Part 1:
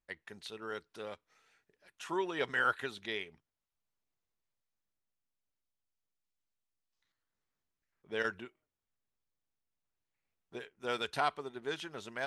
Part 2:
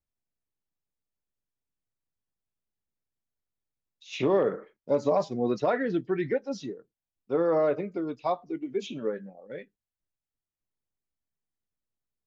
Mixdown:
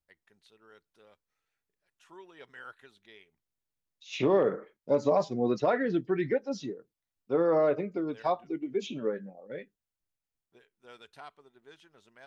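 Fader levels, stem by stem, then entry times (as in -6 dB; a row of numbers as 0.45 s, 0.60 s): -16.0 dB, -0.5 dB; 0.00 s, 0.00 s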